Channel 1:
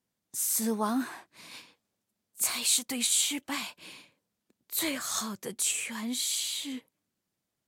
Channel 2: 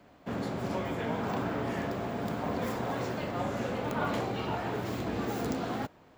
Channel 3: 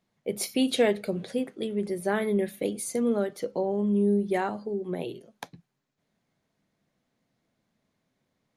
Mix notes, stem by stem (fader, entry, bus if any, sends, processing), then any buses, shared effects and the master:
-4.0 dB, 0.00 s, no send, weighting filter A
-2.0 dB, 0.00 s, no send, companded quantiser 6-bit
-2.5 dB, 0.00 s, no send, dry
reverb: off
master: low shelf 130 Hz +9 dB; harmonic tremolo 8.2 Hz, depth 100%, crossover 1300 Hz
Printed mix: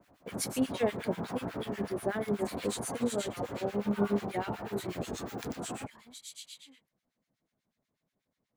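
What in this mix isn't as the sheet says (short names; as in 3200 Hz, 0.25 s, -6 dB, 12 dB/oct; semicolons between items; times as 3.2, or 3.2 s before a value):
stem 1 -4.0 dB -> -12.0 dB; master: missing low shelf 130 Hz +9 dB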